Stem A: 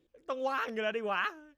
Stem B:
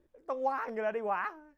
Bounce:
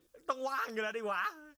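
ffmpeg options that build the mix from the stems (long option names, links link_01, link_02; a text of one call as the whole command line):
ffmpeg -i stem1.wav -i stem2.wav -filter_complex "[0:a]equalizer=frequency=1300:width=1.6:gain=8,volume=0.5dB[link_01];[1:a]aexciter=amount=15.1:drive=4.6:freq=3100,highpass=frequency=1100:poles=1,adelay=7.2,volume=-10.5dB,asplit=2[link_02][link_03];[link_03]apad=whole_len=69447[link_04];[link_01][link_04]sidechaincompress=threshold=-52dB:ratio=8:attack=38:release=311[link_05];[link_05][link_02]amix=inputs=2:normalize=0" out.wav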